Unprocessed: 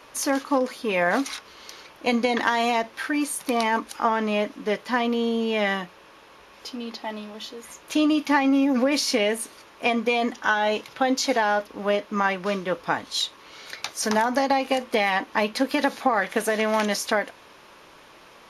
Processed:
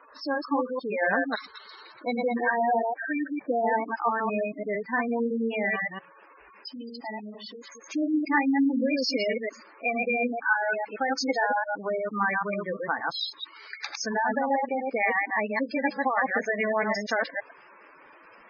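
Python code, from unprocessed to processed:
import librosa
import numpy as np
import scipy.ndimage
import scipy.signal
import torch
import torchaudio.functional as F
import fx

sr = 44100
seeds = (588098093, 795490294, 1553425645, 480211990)

y = fx.reverse_delay(x, sr, ms=113, wet_db=-2)
y = fx.cheby_ripple(y, sr, hz=fx.steps((0.0, 5500.0), (2.4, 2400.0), (3.88, 6700.0)), ripple_db=6)
y = fx.spec_gate(y, sr, threshold_db=-10, keep='strong')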